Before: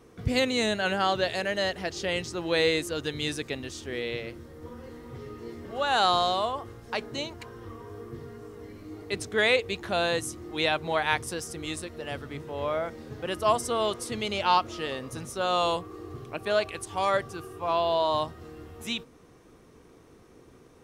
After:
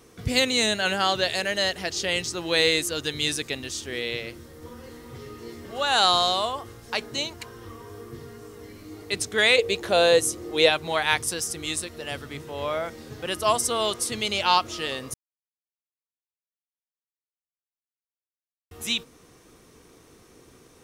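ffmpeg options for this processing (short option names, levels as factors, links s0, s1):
-filter_complex "[0:a]asettb=1/sr,asplit=3[s0][s1][s2];[s0]atrim=end=9.584[s3];[s1]atrim=start=9.58:end=10.7,asetpts=PTS-STARTPTS,afade=t=in:d=0.004:c=qsin,afade=t=out:st=1.116:d=0.004:c=qsin,equalizer=f=490:t=o:w=0.77:g=11.5[s4];[s2]atrim=start=10.696[s5];[s3][s4]acrossfade=d=0.004:c1=hsin:c2=qsin[s6];[s6][s5]acrossfade=d=0.004:c1=qsin:c2=hsin,asplit=3[s7][s8][s9];[s7]atrim=end=15.14,asetpts=PTS-STARTPTS,afade=t=out:st=15.136:d=0.004:c=hsin[s10];[s8]atrim=start=15.14:end=18.71,asetpts=PTS-STARTPTS,volume=0[s11];[s9]atrim=start=18.71,asetpts=PTS-STARTPTS,afade=t=in:d=0.004:c=hsin[s12];[s10][s11][s12]concat=n=3:v=0:a=1,highshelf=f=2600:g=11"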